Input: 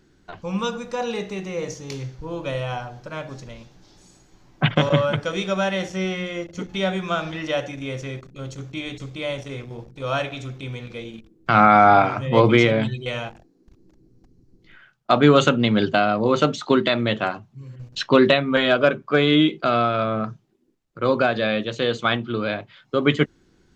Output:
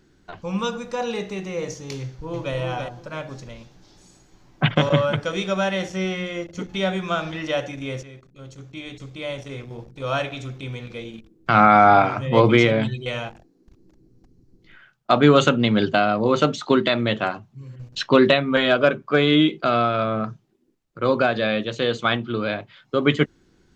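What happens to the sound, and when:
2.00–2.55 s: echo throw 330 ms, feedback 20%, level -5 dB
8.03–9.90 s: fade in linear, from -12 dB

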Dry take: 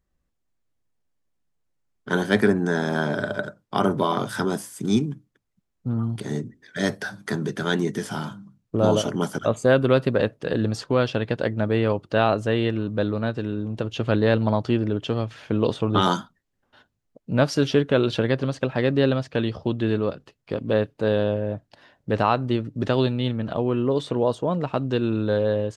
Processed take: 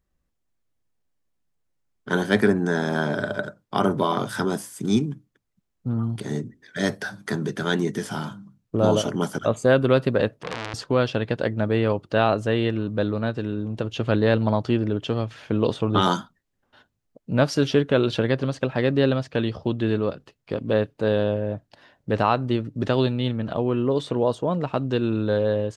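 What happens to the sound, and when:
10.29–10.74 s: transformer saturation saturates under 3.2 kHz

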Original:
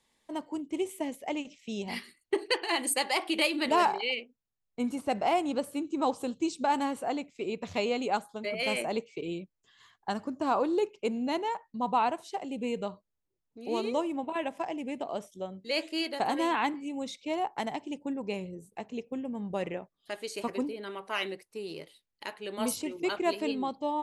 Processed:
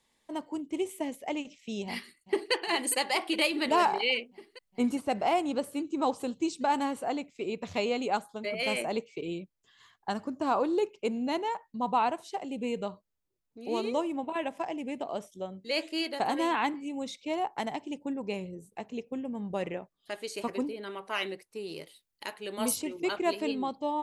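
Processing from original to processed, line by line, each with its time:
1.85–2.53 s: echo throw 410 ms, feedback 75%, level -15 dB
3.92–4.97 s: gain +3.5 dB
21.71–22.79 s: treble shelf 5.4 kHz -> 9 kHz +8 dB

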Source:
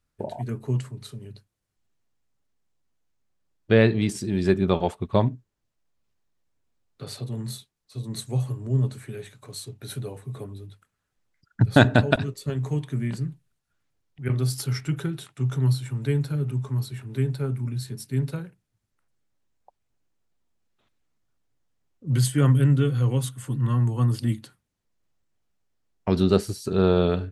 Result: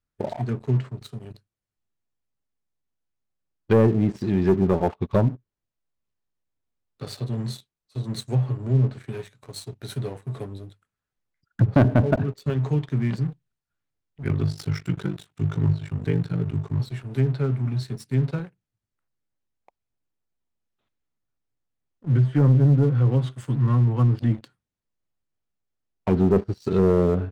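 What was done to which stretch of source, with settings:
14.23–16.80 s: ring modulator 25 Hz
whole clip: low-pass that closes with the level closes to 820 Hz, closed at -16.5 dBFS; treble shelf 6.6 kHz -5.5 dB; waveshaping leveller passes 2; trim -4 dB

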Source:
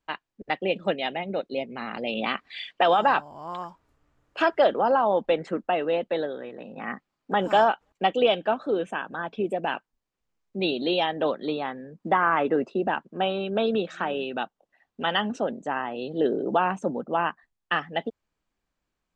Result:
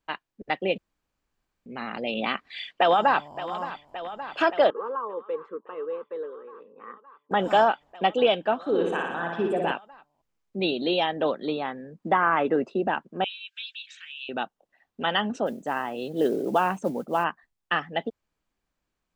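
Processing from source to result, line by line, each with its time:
0.78–1.66 s: room tone
2.33–3.37 s: echo throw 570 ms, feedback 85%, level -14 dB
4.70–7.31 s: two resonant band-passes 710 Hz, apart 1.3 oct
8.60–9.72 s: flutter echo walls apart 10.1 m, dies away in 0.98 s
13.24–14.29 s: steep high-pass 2.2 kHz
15.46–17.24 s: modulation noise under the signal 29 dB

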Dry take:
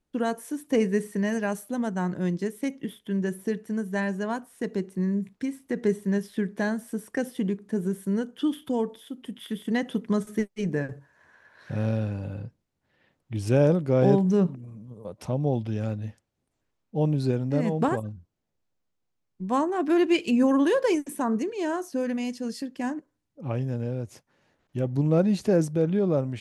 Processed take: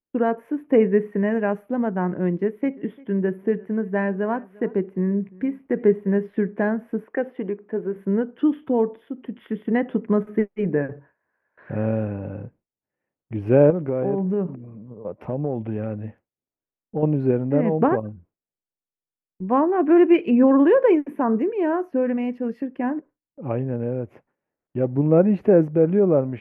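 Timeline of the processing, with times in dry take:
2.29–6.30 s: delay 347 ms -23.5 dB
7.04–7.96 s: tone controls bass -13 dB, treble -7 dB
13.70–17.03 s: compression 10:1, threshold -24 dBFS
whole clip: FFT filter 110 Hz 0 dB, 410 Hz +8 dB, 2.3 kHz +1 dB, 7.9 kHz -18 dB; gate with hold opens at -42 dBFS; high-order bell 5.8 kHz -15.5 dB

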